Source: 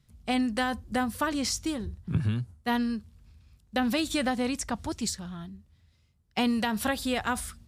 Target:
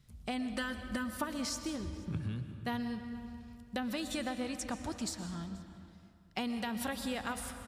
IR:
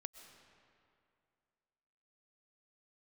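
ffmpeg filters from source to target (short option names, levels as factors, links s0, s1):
-filter_complex "[0:a]asettb=1/sr,asplit=3[s0][s1][s2];[s0]atrim=end=0.534[s3];[s1]atrim=start=0.53:end=1.24,asetpts=PTS-STARTPTS,afade=t=in:d=0.004:c=qsin,afade=t=out:st=0.706:d=0.004:c=qsin,aecho=1:1:3.3:0.91,atrim=end_sample=31311[s4];[s2]atrim=start=1.236[s5];[s3][s4]acrossfade=d=0.004:c1=hsin:c2=qsin[s6];[s6][s5]acrossfade=d=0.004:c1=qsin:c2=hsin,acompressor=threshold=0.00891:ratio=2.5,aecho=1:1:481:0.0631[s7];[1:a]atrim=start_sample=2205[s8];[s7][s8]afir=irnorm=-1:irlink=0,volume=2.11"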